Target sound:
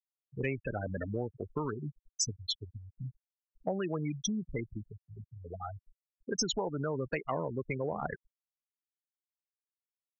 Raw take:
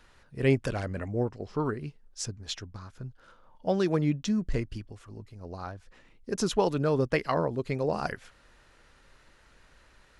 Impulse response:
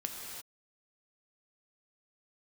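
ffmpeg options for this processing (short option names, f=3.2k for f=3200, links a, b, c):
-filter_complex "[0:a]afftfilt=real='re*gte(hypot(re,im),0.0501)':imag='im*gte(hypot(re,im),0.0501)':win_size=1024:overlap=0.75,asplit=2[a][b];[b]alimiter=limit=-23dB:level=0:latency=1:release=45,volume=0.5dB[c];[a][c]amix=inputs=2:normalize=0,acrossover=split=94|840|6200[d][e][f][g];[d]acompressor=threshold=-44dB:ratio=4[h];[e]acompressor=threshold=-28dB:ratio=4[i];[f]acompressor=threshold=-44dB:ratio=4[j];[g]acompressor=threshold=-41dB:ratio=4[k];[h][i][j][k]amix=inputs=4:normalize=0,tiltshelf=f=1.4k:g=-7.5,volume=1.5dB"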